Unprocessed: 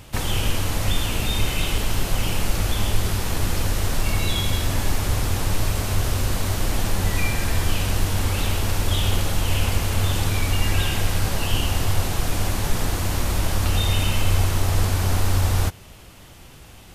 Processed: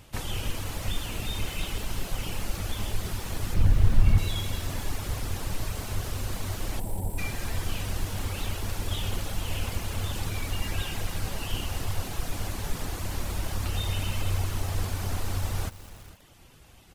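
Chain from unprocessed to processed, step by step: multi-tap echo 324/461 ms -19.5/-18 dB; reverb removal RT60 0.54 s; 3.54–4.18 s: tone controls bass +13 dB, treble -8 dB; 6.80–7.18 s: spectral selection erased 1–7.4 kHz; bit-crushed delay 203 ms, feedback 55%, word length 5-bit, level -15 dB; trim -8 dB

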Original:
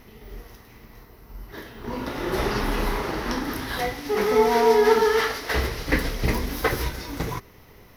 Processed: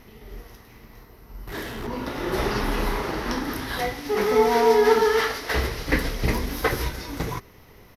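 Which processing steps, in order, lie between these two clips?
1.47–1.87 s: power-law waveshaper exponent 0.5; resampled via 32 kHz

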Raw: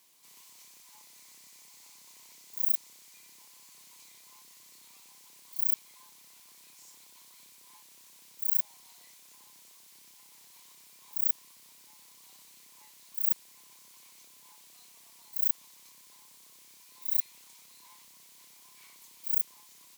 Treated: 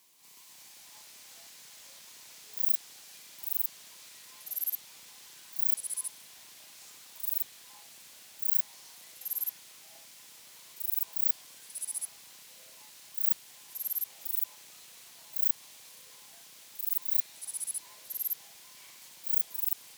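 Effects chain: repeats whose band climbs or falls 171 ms, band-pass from 3.3 kHz, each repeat 0.7 oct, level -4 dB; ever faster or slower copies 191 ms, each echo -4 st, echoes 3

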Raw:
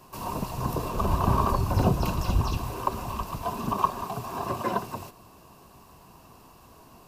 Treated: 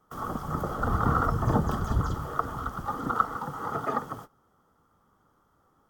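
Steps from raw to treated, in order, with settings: gate -44 dBFS, range -13 dB; resonant high shelf 1.6 kHz -6.5 dB, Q 1.5; tape speed +20%; trim -2 dB

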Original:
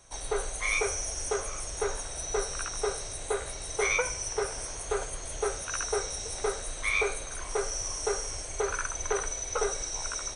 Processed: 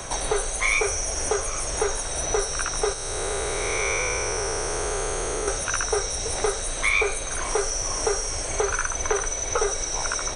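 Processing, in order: 2.93–5.48 s: spectral blur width 407 ms; three bands compressed up and down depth 70%; trim +6.5 dB

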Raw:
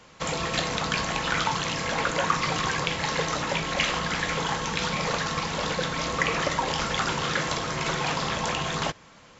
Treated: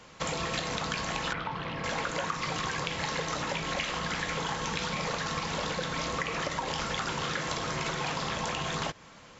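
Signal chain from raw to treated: compression, threshold -29 dBFS, peak gain reduction 11 dB; 1.33–1.84 s: distance through air 350 m

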